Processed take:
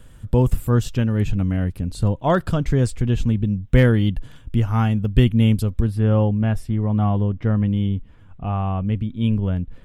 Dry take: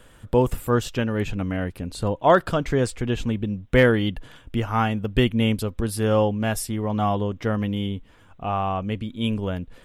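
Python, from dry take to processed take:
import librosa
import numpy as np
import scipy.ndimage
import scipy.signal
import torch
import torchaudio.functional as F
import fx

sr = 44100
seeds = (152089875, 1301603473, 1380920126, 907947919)

y = fx.bass_treble(x, sr, bass_db=13, treble_db=fx.steps((0.0, 4.0), (5.85, -14.0), (7.68, -7.0)))
y = y * librosa.db_to_amplitude(-4.0)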